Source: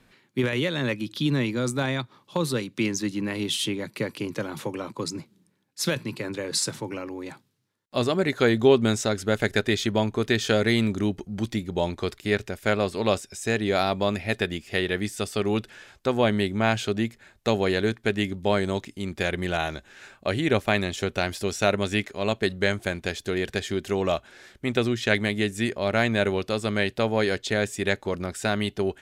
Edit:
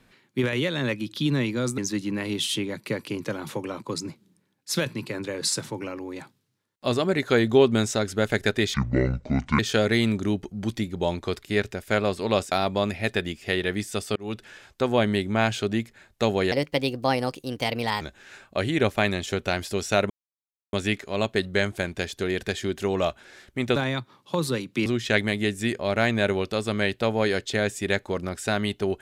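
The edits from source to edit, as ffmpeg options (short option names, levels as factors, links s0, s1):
-filter_complex "[0:a]asplit=11[s0][s1][s2][s3][s4][s5][s6][s7][s8][s9][s10];[s0]atrim=end=1.782[s11];[s1]atrim=start=2.878:end=9.844[s12];[s2]atrim=start=9.84:end=10.34,asetpts=PTS-STARTPTS,asetrate=26019,aresample=44100[s13];[s3]atrim=start=10.336:end=13.272[s14];[s4]atrim=start=13.768:end=15.41,asetpts=PTS-STARTPTS,afade=t=out:st=1.638:d=0.004:c=hsin[s15];[s5]atrim=start=15.41:end=17.774,asetpts=PTS-STARTPTS,afade=t=in:d=0.3[s16];[s6]atrim=start=17.77:end=19.71,asetpts=PTS-STARTPTS,asetrate=57330,aresample=44100[s17];[s7]atrim=start=19.706:end=21.8,asetpts=PTS-STARTPTS,afade=t=out:st=2.09:d=0.004:c=hsin,apad=pad_dur=0.63[s18];[s8]atrim=start=21.8:end=24.832,asetpts=PTS-STARTPTS,afade=t=in:d=0.004:c=hsin[s19];[s9]atrim=start=1.778:end=2.882[s20];[s10]atrim=start=24.828[s21];[s11][s12]acrossfade=d=0.004:c1=hsin:c2=hsin[s22];[s22][s13]acrossfade=d=0.004:c1=hsin:c2=hsin[s23];[s23][s14]acrossfade=d=0.004:c1=hsin:c2=hsin[s24];[s15][s16]concat=n=2:v=0:a=1[s25];[s24][s25]acrossfade=d=0.004:c1=hsin:c2=hsin[s26];[s26][s17]acrossfade=d=0.004:c1=hsin:c2=hsin[s27];[s18][s19]concat=n=2:v=0:a=1[s28];[s27][s28]acrossfade=d=0.004:c1=hsin:c2=hsin[s29];[s29][s20]acrossfade=d=0.004:c1=hsin:c2=hsin[s30];[s30][s21]acrossfade=d=0.004:c1=hsin:c2=hsin"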